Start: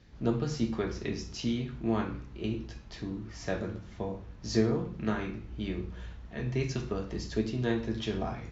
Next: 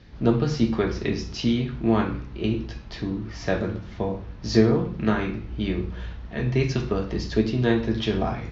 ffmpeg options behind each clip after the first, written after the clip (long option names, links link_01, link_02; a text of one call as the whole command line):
ffmpeg -i in.wav -af "lowpass=frequency=5500:width=0.5412,lowpass=frequency=5500:width=1.3066,volume=8.5dB" out.wav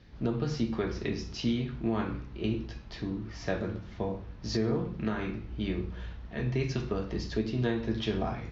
ffmpeg -i in.wav -af "alimiter=limit=-12.5dB:level=0:latency=1:release=193,volume=-6dB" out.wav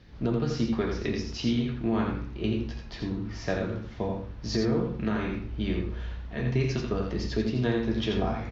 ffmpeg -i in.wav -af "aecho=1:1:84:0.562,volume=2dB" out.wav